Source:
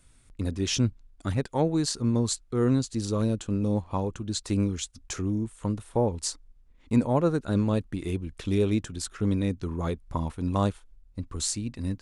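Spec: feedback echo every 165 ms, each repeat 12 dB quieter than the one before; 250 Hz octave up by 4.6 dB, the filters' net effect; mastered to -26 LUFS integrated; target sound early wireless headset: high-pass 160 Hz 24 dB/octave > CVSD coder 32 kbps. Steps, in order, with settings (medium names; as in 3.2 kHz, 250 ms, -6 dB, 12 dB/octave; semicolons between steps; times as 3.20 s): high-pass 160 Hz 24 dB/octave; peaking EQ 250 Hz +6 dB; feedback delay 165 ms, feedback 25%, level -12 dB; CVSD coder 32 kbps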